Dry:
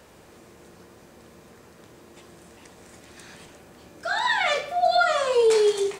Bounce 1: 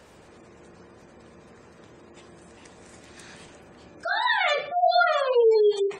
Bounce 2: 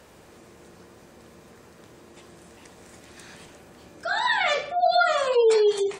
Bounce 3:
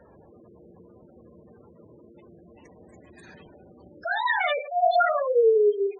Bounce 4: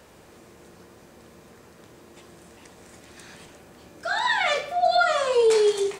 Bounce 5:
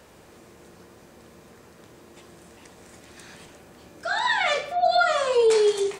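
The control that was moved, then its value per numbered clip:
spectral gate, under each frame's peak: -25 dB, -35 dB, -10 dB, -60 dB, -50 dB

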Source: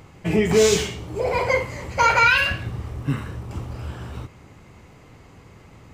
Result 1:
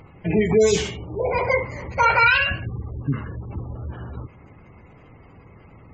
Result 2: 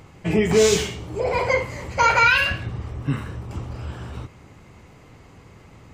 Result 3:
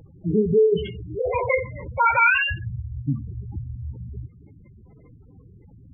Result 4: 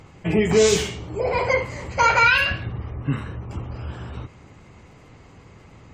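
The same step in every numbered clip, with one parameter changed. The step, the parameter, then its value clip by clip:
spectral gate, under each frame's peak: -25 dB, -50 dB, -10 dB, -40 dB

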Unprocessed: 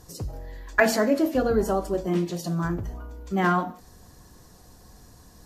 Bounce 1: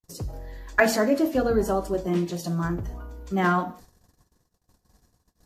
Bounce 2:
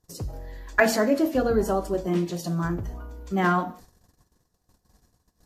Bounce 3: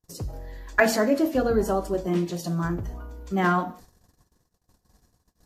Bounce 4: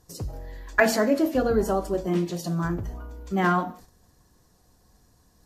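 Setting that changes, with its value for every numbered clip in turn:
gate, range: -54 dB, -24 dB, -37 dB, -10 dB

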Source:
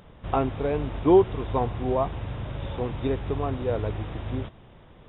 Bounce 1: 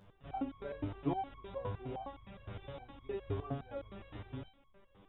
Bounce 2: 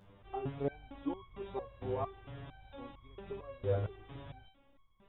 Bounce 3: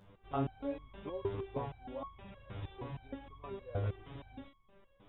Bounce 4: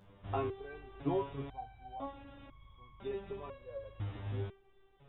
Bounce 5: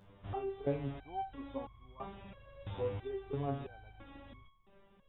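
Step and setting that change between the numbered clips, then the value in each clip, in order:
resonator arpeggio, rate: 9.7 Hz, 4.4 Hz, 6.4 Hz, 2 Hz, 3 Hz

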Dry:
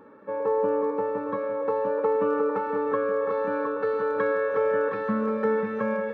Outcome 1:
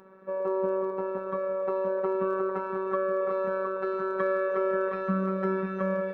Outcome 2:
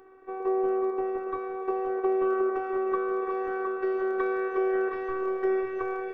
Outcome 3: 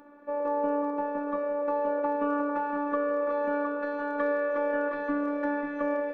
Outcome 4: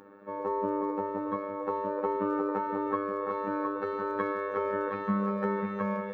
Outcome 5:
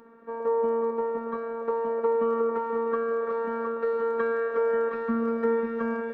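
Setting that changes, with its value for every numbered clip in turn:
robot voice, frequency: 190 Hz, 380 Hz, 290 Hz, 100 Hz, 230 Hz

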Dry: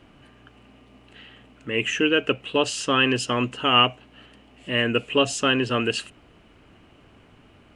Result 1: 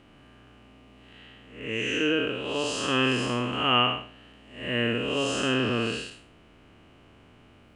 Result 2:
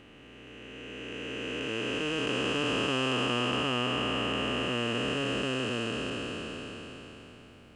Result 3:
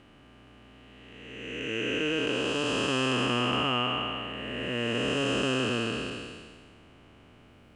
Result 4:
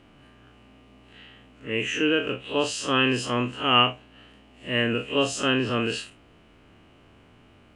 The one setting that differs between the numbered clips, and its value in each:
spectral blur, width: 225 ms, 1780 ms, 716 ms, 81 ms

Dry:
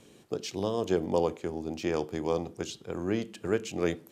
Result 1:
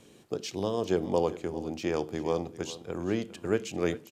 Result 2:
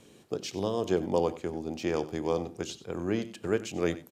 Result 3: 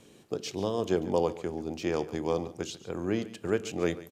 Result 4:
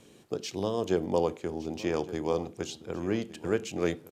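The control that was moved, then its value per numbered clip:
delay, time: 401 ms, 93 ms, 141 ms, 1163 ms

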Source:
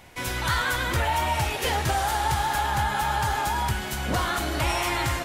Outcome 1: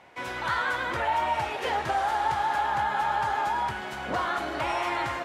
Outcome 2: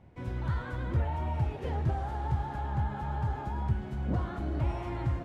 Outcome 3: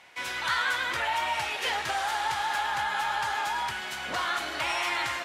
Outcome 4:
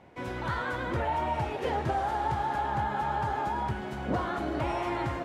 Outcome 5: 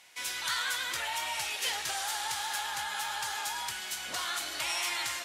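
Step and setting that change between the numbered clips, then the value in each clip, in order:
band-pass filter, frequency: 870 Hz, 110 Hz, 2.2 kHz, 340 Hz, 6 kHz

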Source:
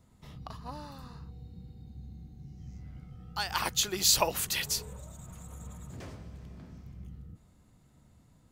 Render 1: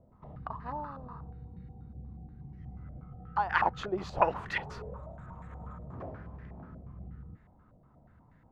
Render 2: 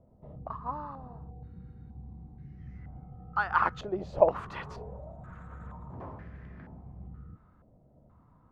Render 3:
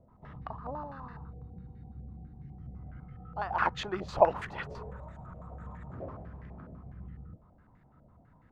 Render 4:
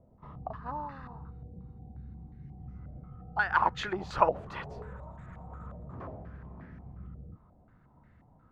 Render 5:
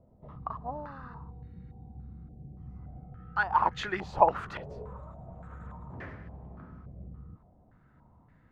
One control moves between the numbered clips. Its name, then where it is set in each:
step-sequenced low-pass, rate: 8.3 Hz, 2.1 Hz, 12 Hz, 5.6 Hz, 3.5 Hz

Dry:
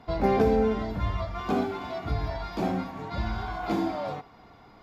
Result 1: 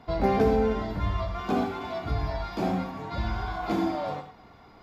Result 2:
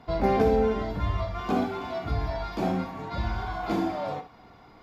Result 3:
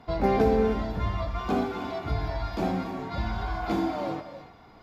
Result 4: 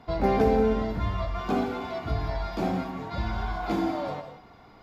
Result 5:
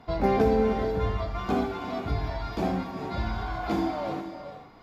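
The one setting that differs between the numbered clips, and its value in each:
gated-style reverb, gate: 130 ms, 80 ms, 330 ms, 210 ms, 500 ms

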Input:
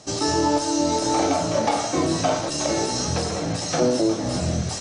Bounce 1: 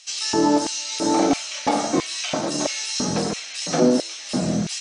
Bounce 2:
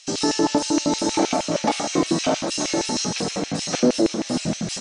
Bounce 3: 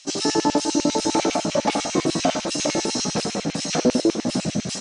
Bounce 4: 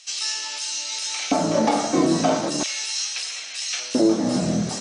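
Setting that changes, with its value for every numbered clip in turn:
LFO high-pass, rate: 1.5 Hz, 6.4 Hz, 10 Hz, 0.38 Hz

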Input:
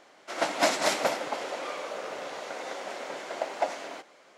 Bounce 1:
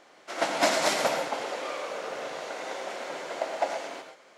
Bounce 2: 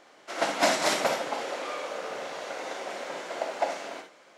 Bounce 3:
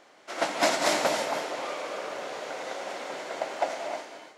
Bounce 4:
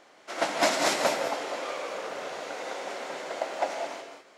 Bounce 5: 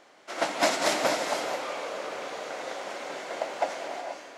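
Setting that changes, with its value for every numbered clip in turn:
gated-style reverb, gate: 150 ms, 90 ms, 340 ms, 230 ms, 510 ms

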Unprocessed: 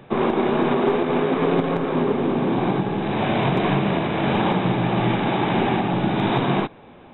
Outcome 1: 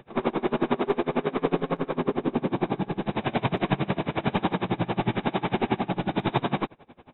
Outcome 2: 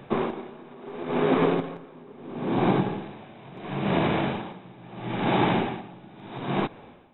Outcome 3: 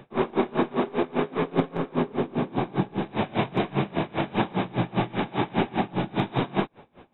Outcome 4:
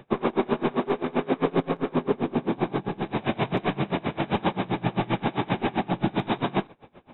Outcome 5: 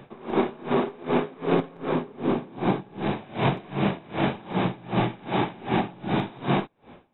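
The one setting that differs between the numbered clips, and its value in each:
logarithmic tremolo, rate: 11 Hz, 0.74 Hz, 5 Hz, 7.6 Hz, 2.6 Hz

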